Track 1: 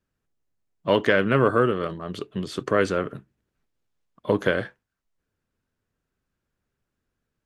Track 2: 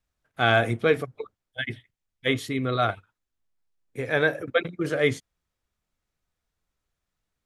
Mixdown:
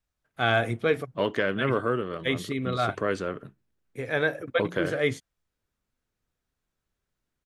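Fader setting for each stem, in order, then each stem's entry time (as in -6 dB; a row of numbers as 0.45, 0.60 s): -6.5, -3.0 dB; 0.30, 0.00 s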